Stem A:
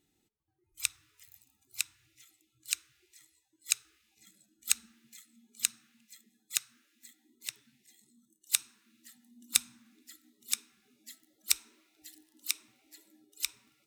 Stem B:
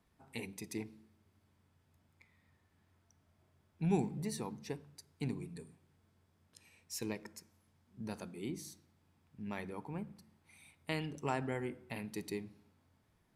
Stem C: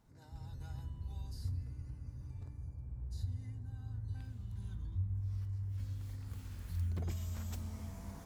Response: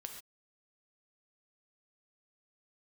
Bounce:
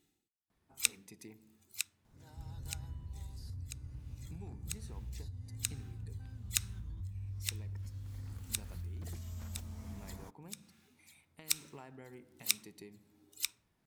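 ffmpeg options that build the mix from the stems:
-filter_complex "[0:a]aeval=exprs='val(0)*pow(10,-21*(0.5-0.5*cos(2*PI*1.2*n/s))/20)':c=same,volume=1dB[a];[1:a]acompressor=threshold=-46dB:ratio=4,adelay=500,volume=-3.5dB[b];[2:a]adelay=2050,volume=1dB[c];[b][c]amix=inputs=2:normalize=0,alimiter=level_in=12dB:limit=-24dB:level=0:latency=1:release=435,volume=-12dB,volume=0dB[d];[a][d]amix=inputs=2:normalize=0"

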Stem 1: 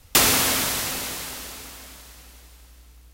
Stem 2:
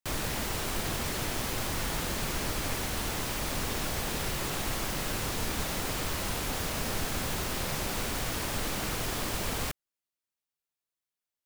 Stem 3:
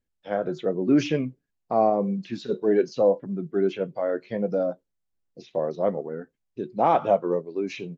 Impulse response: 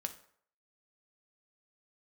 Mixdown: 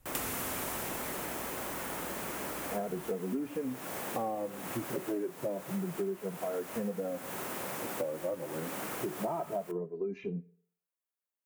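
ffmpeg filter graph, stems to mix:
-filter_complex "[0:a]volume=-9.5dB[a];[1:a]highpass=250,volume=-5dB,asplit=2[b][c];[c]volume=-4.5dB[d];[2:a]lowpass=f=1.5k:p=1,asplit=2[e][f];[f]adelay=2.6,afreqshift=0.28[g];[e][g]amix=inputs=2:normalize=1,adelay=2450,volume=3dB,asplit=2[h][i];[i]volume=-10.5dB[j];[3:a]atrim=start_sample=2205[k];[d][j]amix=inputs=2:normalize=0[l];[l][k]afir=irnorm=-1:irlink=0[m];[a][b][h][m]amix=inputs=4:normalize=0,equalizer=f=4.4k:t=o:w=1.5:g=-11.5,acompressor=threshold=-32dB:ratio=10"

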